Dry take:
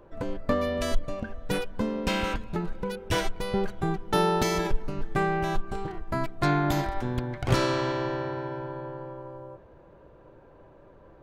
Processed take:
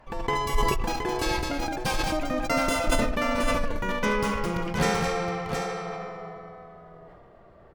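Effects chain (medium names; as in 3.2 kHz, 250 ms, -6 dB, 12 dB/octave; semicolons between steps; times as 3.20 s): gliding tape speed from 175% -> 115%; multi-tap echo 74/212/719/786 ms -13/-6.5/-6.5/-19.5 dB; decay stretcher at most 29 dB/s; trim -2 dB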